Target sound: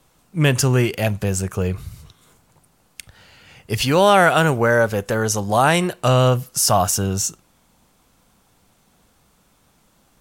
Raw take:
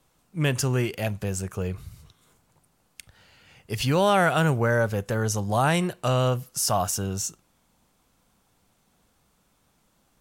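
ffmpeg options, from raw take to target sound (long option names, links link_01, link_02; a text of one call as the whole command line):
ffmpeg -i in.wav -filter_complex "[0:a]asettb=1/sr,asplit=3[link_01][link_02][link_03];[link_01]atrim=end=3.774[link_04];[link_02]atrim=start=3.77:end=6.01,asetpts=PTS-STARTPTS,afade=type=in:duration=0.004:curve=qsin,afade=type=out:start_time=2.236:duration=0.004:curve=qsin,equalizer=frequency=120:width=1:gain=-6.5[link_05];[link_03]atrim=start=6.006[link_06];[link_04][link_05]acrossfade=duration=0.004:curve1=hsin:curve2=qsin[link_07];[link_07][link_06]acrossfade=duration=0.004:curve1=qsin:curve2=hsin,volume=7.5dB" out.wav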